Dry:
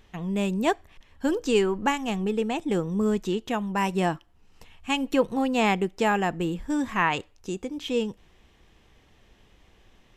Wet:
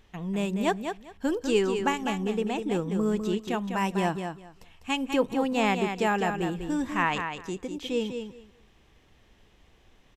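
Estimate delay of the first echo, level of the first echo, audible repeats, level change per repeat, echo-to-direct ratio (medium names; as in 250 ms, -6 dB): 200 ms, -7.0 dB, 2, -15.0 dB, -7.0 dB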